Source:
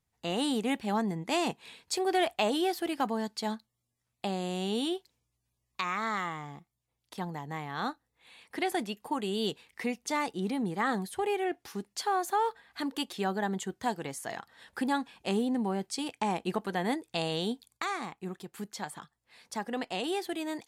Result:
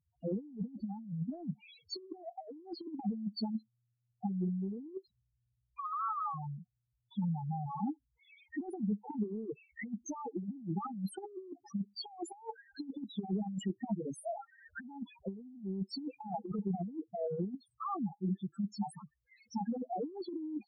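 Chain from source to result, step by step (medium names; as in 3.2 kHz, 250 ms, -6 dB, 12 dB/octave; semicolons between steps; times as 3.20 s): loudest bins only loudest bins 2; compressor with a negative ratio -40 dBFS, ratio -0.5; peaking EQ 200 Hz +5.5 dB 0.43 oct; trim +1 dB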